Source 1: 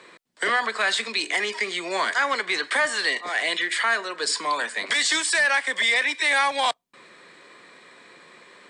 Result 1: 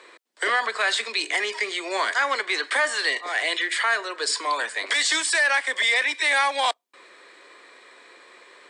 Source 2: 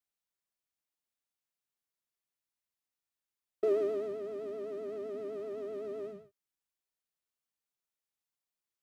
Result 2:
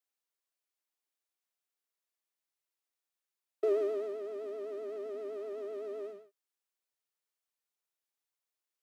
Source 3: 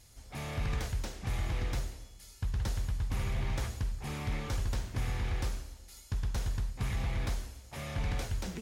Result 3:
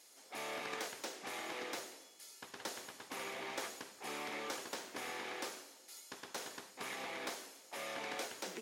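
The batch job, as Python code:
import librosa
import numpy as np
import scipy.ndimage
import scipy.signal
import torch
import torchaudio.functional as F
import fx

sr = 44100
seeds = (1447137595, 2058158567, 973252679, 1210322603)

y = scipy.signal.sosfilt(scipy.signal.butter(4, 310.0, 'highpass', fs=sr, output='sos'), x)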